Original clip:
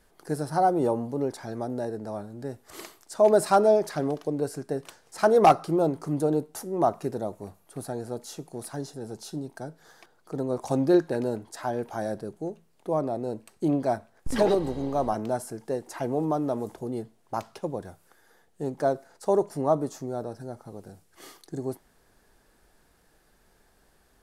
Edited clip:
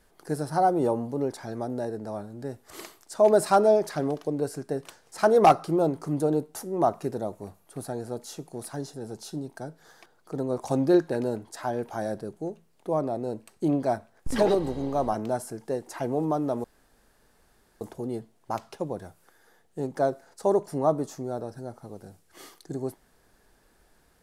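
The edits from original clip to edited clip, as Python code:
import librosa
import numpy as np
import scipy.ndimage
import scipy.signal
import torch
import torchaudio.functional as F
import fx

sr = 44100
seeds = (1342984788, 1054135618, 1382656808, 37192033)

y = fx.edit(x, sr, fx.insert_room_tone(at_s=16.64, length_s=1.17), tone=tone)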